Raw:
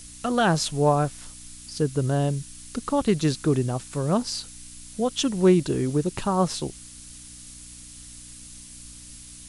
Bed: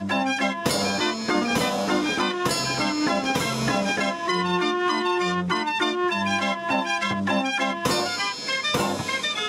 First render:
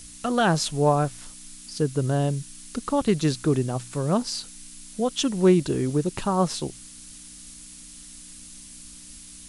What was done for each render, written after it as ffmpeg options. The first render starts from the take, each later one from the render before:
-af "bandreject=f=60:t=h:w=4,bandreject=f=120:t=h:w=4"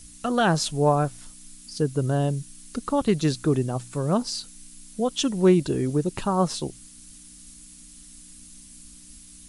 -af "afftdn=nr=6:nf=-45"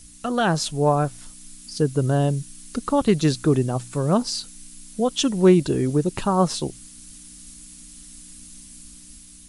-af "dynaudnorm=f=430:g=5:m=3.5dB"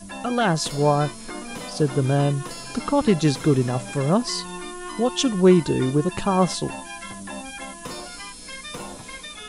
-filter_complex "[1:a]volume=-12dB[a];[0:a][a]amix=inputs=2:normalize=0"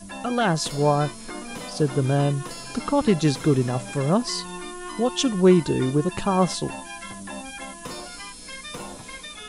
-af "volume=-1dB"

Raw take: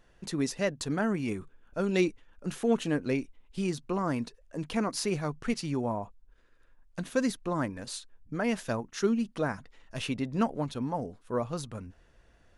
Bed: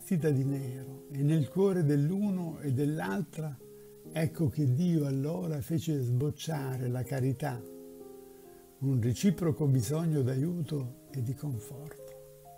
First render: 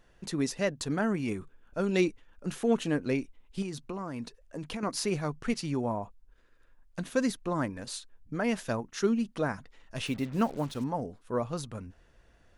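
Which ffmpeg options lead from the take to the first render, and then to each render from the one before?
-filter_complex "[0:a]asettb=1/sr,asplit=3[a][b][c];[a]atrim=end=3.624[d];[b]atrim=start=3.62:end=4.83,asetpts=PTS-STARTPTS,afade=t=in:d=0.004:c=qsin,afade=t=out:st=1.206:d=0.004:c=qsin,acompressor=threshold=-32dB:ratio=10:attack=3.2:release=140:knee=1:detection=peak[e];[c]atrim=start=4.826[f];[d][e]acrossfade=d=0.004:c1=hsin:c2=qsin[g];[g][f]acrossfade=d=0.004:c1=qsin:c2=hsin,asettb=1/sr,asplit=3[h][i][j];[h]atrim=end=10.064[k];[i]atrim=start=10.06:end=10.84,asetpts=PTS-STARTPTS,afade=t=in:d=0.004:c=qsin,afade=t=out:st=0.776:d=0.004:c=qsin,acrusher=bits=7:mix=0:aa=0.5[l];[j]atrim=start=10.836[m];[k][l]acrossfade=d=0.004:c1=hsin:c2=qsin[n];[n][m]acrossfade=d=0.004:c1=qsin:c2=hsin"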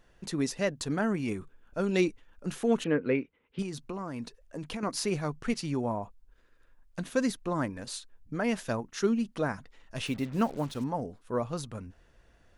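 -filter_complex "[0:a]asettb=1/sr,asplit=3[a][b][c];[a]atrim=end=2.844[d];[b]atrim=start=2.84:end=3.59,asetpts=PTS-STARTPTS,afade=t=in:d=0.004:c=qsin,afade=t=out:st=0.746:d=0.004:c=qsin,highpass=120,equalizer=f=470:t=q:w=4:g=8,equalizer=f=730:t=q:w=4:g=-5,equalizer=f=1.4k:t=q:w=4:g=4,equalizer=f=2.1k:t=q:w=4:g=4,lowpass=f=3.1k:w=0.5412,lowpass=f=3.1k:w=1.3066[e];[c]atrim=start=3.586[f];[d][e]acrossfade=d=0.004:c1=hsin:c2=qsin[g];[g][f]acrossfade=d=0.004:c1=qsin:c2=hsin"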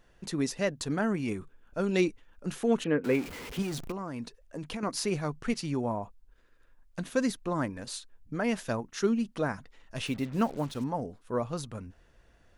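-filter_complex "[0:a]asettb=1/sr,asplit=3[a][b][c];[a]atrim=end=3.044[d];[b]atrim=start=3.04:end=3.92,asetpts=PTS-STARTPTS,afade=t=in:d=0.004:c=qsin,afade=t=out:st=0.876:d=0.004:c=qsin,aeval=exprs='val(0)+0.5*0.0158*sgn(val(0))':c=same[e];[c]atrim=start=3.916[f];[d][e]acrossfade=d=0.004:c1=hsin:c2=qsin[g];[g][f]acrossfade=d=0.004:c1=qsin:c2=hsin"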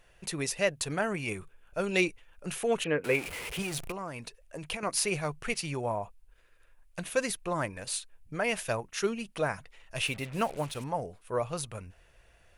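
-af "equalizer=f=250:t=o:w=0.67:g=-11,equalizer=f=630:t=o:w=0.67:g=3,equalizer=f=2.5k:t=o:w=0.67:g=8,equalizer=f=10k:t=o:w=0.67:g=10"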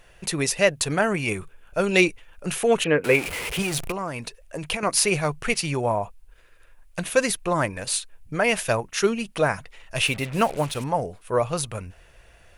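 -af "volume=8.5dB"

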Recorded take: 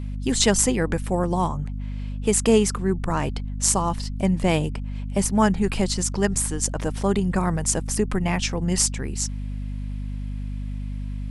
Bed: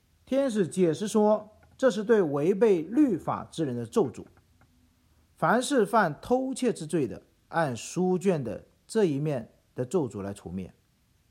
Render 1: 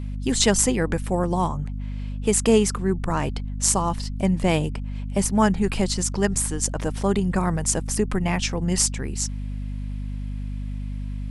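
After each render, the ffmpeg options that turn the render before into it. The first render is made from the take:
-af anull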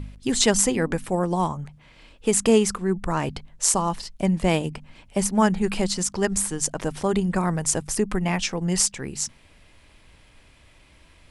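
-af "bandreject=f=50:t=h:w=4,bandreject=f=100:t=h:w=4,bandreject=f=150:t=h:w=4,bandreject=f=200:t=h:w=4,bandreject=f=250:t=h:w=4"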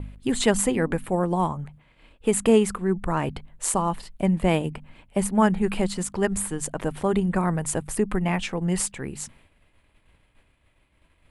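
-af "agate=range=-33dB:threshold=-45dB:ratio=3:detection=peak,equalizer=f=5.6k:w=1.5:g=-14"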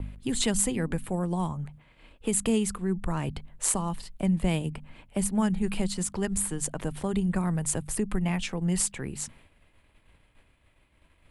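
-filter_complex "[0:a]acrossover=split=200|3000[a][b][c];[b]acompressor=threshold=-38dB:ratio=2[d];[a][d][c]amix=inputs=3:normalize=0"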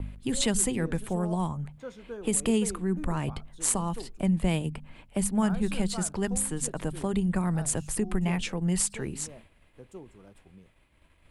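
-filter_complex "[1:a]volume=-18dB[a];[0:a][a]amix=inputs=2:normalize=0"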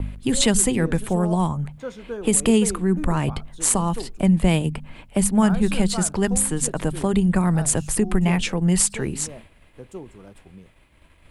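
-af "volume=8dB,alimiter=limit=-3dB:level=0:latency=1"

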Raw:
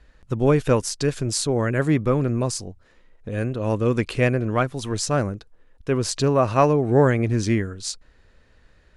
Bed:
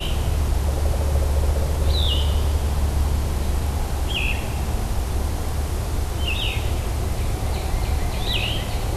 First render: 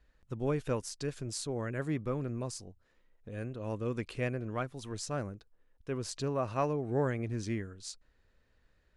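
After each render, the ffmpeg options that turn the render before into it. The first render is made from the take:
-af "volume=-14dB"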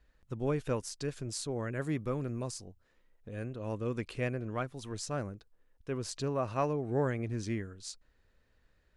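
-filter_complex "[0:a]asettb=1/sr,asplit=3[a][b][c];[a]atrim=end=1.814[d];[b]atrim=start=1.81:end=2.51,asetpts=PTS-STARTPTS,afade=t=in:d=0.004:c=qsin,afade=t=out:st=0.696:d=0.004:c=qsin,highshelf=f=5.4k:g=6.5[e];[c]atrim=start=2.506[f];[d][e]acrossfade=d=0.004:c1=hsin:c2=qsin[g];[g][f]acrossfade=d=0.004:c1=qsin:c2=hsin"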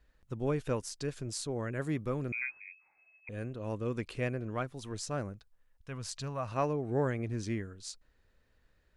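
-filter_complex "[0:a]asettb=1/sr,asplit=3[a][b][c];[a]atrim=end=2.324[d];[b]atrim=start=2.32:end=3.29,asetpts=PTS-STARTPTS,afade=t=in:d=0.004:c=qsin,afade=t=out:st=0.966:d=0.004:c=qsin,lowpass=f=2.2k:t=q:w=0.5098,lowpass=f=2.2k:t=q:w=0.6013,lowpass=f=2.2k:t=q:w=0.9,lowpass=f=2.2k:t=q:w=2.563,afreqshift=-2600[e];[c]atrim=start=3.286[f];[d][e]acrossfade=d=0.004:c1=hsin:c2=qsin[g];[g][f]acrossfade=d=0.004:c1=qsin:c2=hsin,asettb=1/sr,asplit=3[h][i][j];[h]atrim=end=5.334[k];[i]atrim=start=5.33:end=6.52,asetpts=PTS-STARTPTS,afade=t=in:d=0.004:c=qsin,afade=t=out:st=1.186:d=0.004:c=qsin,equalizer=f=360:w=1.4:g=-14[l];[j]atrim=start=6.516[m];[k][l]acrossfade=d=0.004:c1=hsin:c2=qsin[n];[n][m]acrossfade=d=0.004:c1=qsin:c2=hsin"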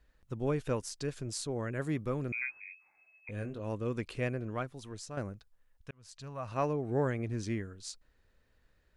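-filter_complex "[0:a]asettb=1/sr,asplit=3[a][b][c];[a]atrim=end=2.534[d];[b]atrim=start=2.53:end=3.6,asetpts=PTS-STARTPTS,afade=t=in:d=0.004:c=qsin,afade=t=out:st=1.066:d=0.004:c=qsin,asplit=2[e][f];[f]adelay=20,volume=-7.5dB[g];[e][g]amix=inputs=2:normalize=0,atrim=end_sample=47187[h];[c]atrim=start=3.596[i];[d][h]acrossfade=d=0.004:c1=hsin:c2=qsin[j];[j][i]acrossfade=d=0.004:c1=qsin:c2=hsin,asplit=3[k][l][m];[k]atrim=end=5.17,asetpts=PTS-STARTPTS,afade=t=out:st=4.45:d=0.72:silence=0.398107[n];[l]atrim=start=5.17:end=5.91,asetpts=PTS-STARTPTS,afade=t=in:d=0.004:c=hsin:silence=0.398107,afade=t=out:st=0.736:d=0.004:c=hsin[o];[m]atrim=start=5.91,asetpts=PTS-STARTPTS,afade=t=in:d=0.75[p];[n][o][p]concat=n=3:v=0:a=1"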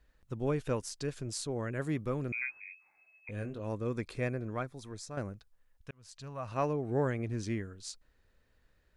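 -filter_complex "[0:a]asettb=1/sr,asplit=3[a][b][c];[a]atrim=end=3.674[d];[b]atrim=start=3.67:end=5.18,asetpts=PTS-STARTPTS,afade=t=in:d=0.004:c=qsin,afade=t=out:st=1.506:d=0.004:c=qsin,bandreject=f=2.9k:w=5.3[e];[c]atrim=start=5.176[f];[d][e]acrossfade=d=0.004:c1=hsin:c2=qsin[g];[g][f]acrossfade=d=0.004:c1=qsin:c2=hsin"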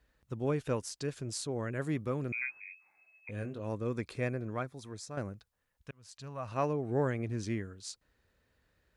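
-af "highpass=55"

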